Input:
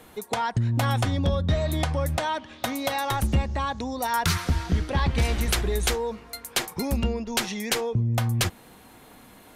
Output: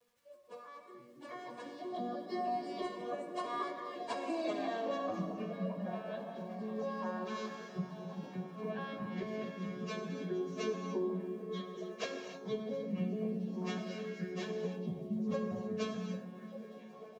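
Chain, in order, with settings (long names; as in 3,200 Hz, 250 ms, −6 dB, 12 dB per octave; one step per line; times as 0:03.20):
vocoder with an arpeggio as carrier minor triad, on G#3, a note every 106 ms
source passing by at 0:02.51, 48 m/s, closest 8.6 metres
camcorder AGC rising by 7.1 dB per second
comb filter 1.8 ms, depth 79%
dynamic equaliser 240 Hz, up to +4 dB, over −48 dBFS, Q 0.7
downward compressor 3 to 1, threshold −32 dBFS, peak gain reduction 9 dB
surface crackle 250 per second −57 dBFS
echo through a band-pass that steps 223 ms, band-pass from 210 Hz, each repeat 0.7 octaves, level −2.5 dB
time stretch by phase vocoder 1.8×
reverb whose tail is shaped and stops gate 330 ms flat, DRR 5 dB
level −1.5 dB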